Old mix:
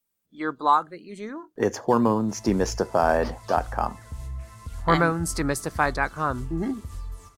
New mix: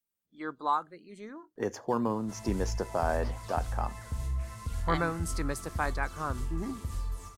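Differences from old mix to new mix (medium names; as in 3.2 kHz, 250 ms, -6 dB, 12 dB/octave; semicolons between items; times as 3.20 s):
speech -9.0 dB; background: send +6.5 dB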